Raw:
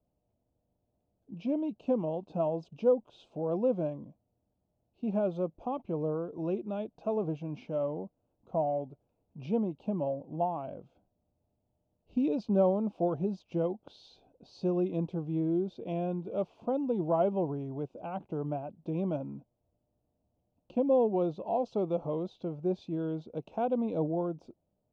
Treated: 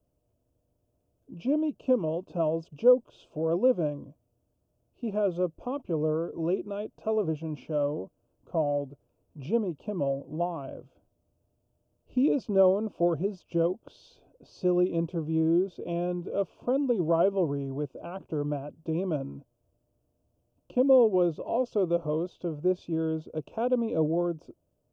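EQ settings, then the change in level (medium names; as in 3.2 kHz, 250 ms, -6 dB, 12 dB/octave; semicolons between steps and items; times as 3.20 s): graphic EQ with 31 bands 200 Hz -11 dB, 800 Hz -10 dB, 2 kHz -11 dB, 4 kHz -9 dB; dynamic bell 860 Hz, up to -3 dB, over -48 dBFS, Q 2.7; +6.0 dB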